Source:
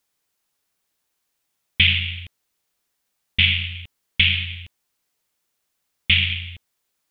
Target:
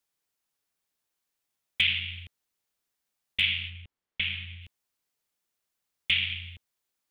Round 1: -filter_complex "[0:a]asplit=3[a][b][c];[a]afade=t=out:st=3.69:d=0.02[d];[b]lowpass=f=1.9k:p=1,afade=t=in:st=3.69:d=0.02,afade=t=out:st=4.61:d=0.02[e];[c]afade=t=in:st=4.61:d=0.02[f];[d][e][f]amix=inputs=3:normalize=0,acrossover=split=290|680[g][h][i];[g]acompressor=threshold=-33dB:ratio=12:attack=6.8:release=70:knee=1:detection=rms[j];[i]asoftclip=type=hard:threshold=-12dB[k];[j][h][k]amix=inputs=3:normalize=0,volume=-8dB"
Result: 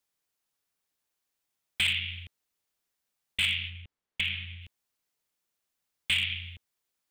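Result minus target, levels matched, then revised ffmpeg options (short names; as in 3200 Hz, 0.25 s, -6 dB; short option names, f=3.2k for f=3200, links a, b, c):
hard clip: distortion +21 dB
-filter_complex "[0:a]asplit=3[a][b][c];[a]afade=t=out:st=3.69:d=0.02[d];[b]lowpass=f=1.9k:p=1,afade=t=in:st=3.69:d=0.02,afade=t=out:st=4.61:d=0.02[e];[c]afade=t=in:st=4.61:d=0.02[f];[d][e][f]amix=inputs=3:normalize=0,acrossover=split=290|680[g][h][i];[g]acompressor=threshold=-33dB:ratio=12:attack=6.8:release=70:knee=1:detection=rms[j];[i]asoftclip=type=hard:threshold=-3.5dB[k];[j][h][k]amix=inputs=3:normalize=0,volume=-8dB"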